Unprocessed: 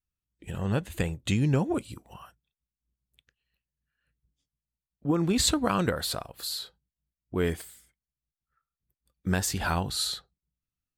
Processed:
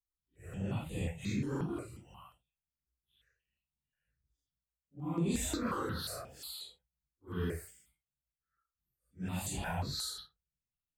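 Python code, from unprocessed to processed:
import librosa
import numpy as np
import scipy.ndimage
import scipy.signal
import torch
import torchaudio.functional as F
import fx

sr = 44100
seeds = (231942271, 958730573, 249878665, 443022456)

p1 = fx.phase_scramble(x, sr, seeds[0], window_ms=200)
p2 = 10.0 ** (-25.5 / 20.0) * np.tanh(p1 / 10.0 ** (-25.5 / 20.0))
p3 = p1 + (p2 * 10.0 ** (-12.0 / 20.0))
p4 = fx.phaser_held(p3, sr, hz=5.6, low_hz=670.0, high_hz=5400.0)
y = p4 * 10.0 ** (-7.5 / 20.0)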